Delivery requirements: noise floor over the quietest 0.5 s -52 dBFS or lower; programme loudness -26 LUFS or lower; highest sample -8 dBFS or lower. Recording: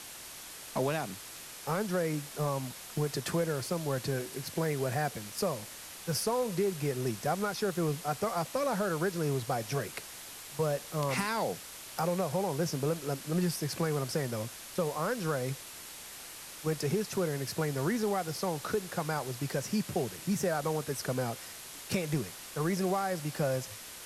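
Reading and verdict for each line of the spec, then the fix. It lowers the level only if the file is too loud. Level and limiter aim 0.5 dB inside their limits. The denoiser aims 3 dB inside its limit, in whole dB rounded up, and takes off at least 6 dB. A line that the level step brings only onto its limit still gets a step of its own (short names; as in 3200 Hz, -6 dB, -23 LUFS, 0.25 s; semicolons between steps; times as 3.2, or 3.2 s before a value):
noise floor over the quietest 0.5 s -46 dBFS: fail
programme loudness -33.5 LUFS: OK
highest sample -18.5 dBFS: OK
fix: denoiser 9 dB, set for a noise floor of -46 dBFS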